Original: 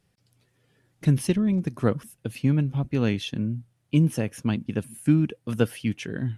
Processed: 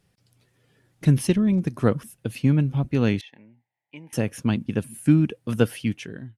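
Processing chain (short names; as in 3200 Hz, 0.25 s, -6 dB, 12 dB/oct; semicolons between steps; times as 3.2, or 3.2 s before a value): ending faded out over 0.57 s; 3.21–4.13 double band-pass 1300 Hz, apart 1.2 oct; gain +2.5 dB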